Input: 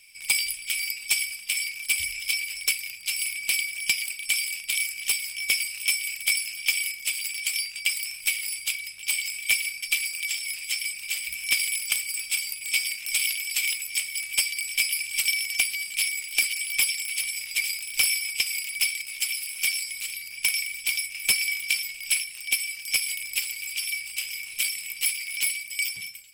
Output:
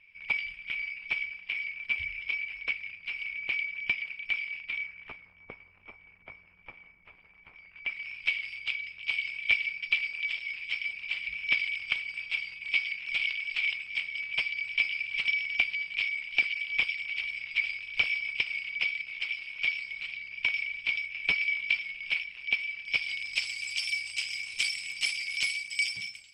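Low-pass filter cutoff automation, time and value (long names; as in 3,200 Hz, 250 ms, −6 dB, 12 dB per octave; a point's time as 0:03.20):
low-pass filter 24 dB per octave
0:04.64 2,400 Hz
0:05.38 1,200 Hz
0:07.51 1,200 Hz
0:08.18 3,100 Hz
0:22.82 3,100 Hz
0:23.55 6,700 Hz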